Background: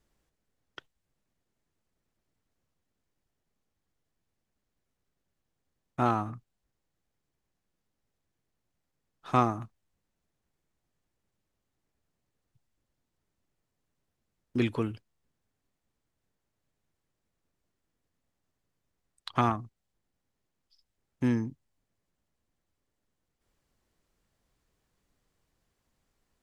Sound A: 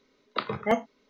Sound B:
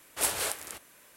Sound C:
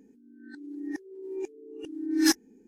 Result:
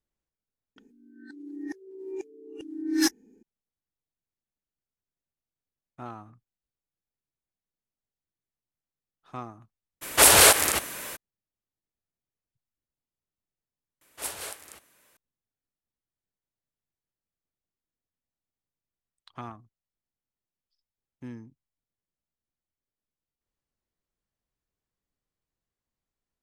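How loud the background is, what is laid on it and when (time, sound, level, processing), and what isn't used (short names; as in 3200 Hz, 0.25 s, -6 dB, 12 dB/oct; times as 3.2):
background -14 dB
0.76 add C -1.5 dB
10.01 add B -3 dB, fades 0.02 s + maximiser +22.5 dB
14.01 replace with B -6.5 dB
not used: A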